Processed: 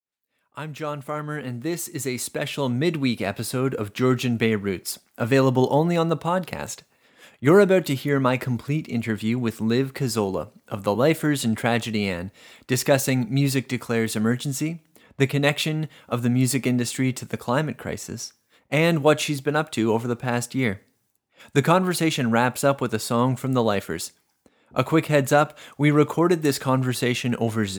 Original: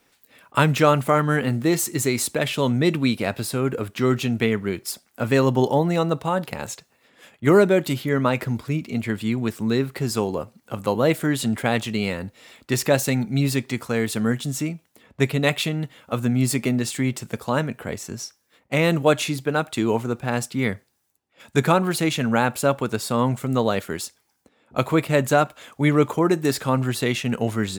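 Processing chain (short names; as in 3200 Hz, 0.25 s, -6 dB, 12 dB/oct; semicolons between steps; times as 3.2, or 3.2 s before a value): opening faded in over 3.89 s; on a send: HPF 470 Hz 6 dB/oct + reverb RT60 0.55 s, pre-delay 4 ms, DRR 24.5 dB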